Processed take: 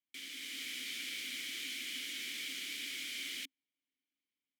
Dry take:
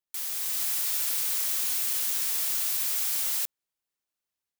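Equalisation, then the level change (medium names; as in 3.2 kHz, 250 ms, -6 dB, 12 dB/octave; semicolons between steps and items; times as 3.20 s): vowel filter i; +11.5 dB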